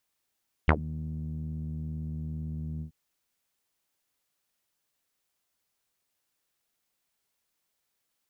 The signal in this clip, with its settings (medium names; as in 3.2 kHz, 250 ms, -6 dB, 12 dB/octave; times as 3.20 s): synth note saw D#2 12 dB/octave, low-pass 190 Hz, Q 5.5, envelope 4 oct, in 0.10 s, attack 3.3 ms, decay 0.07 s, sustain -21.5 dB, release 0.10 s, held 2.13 s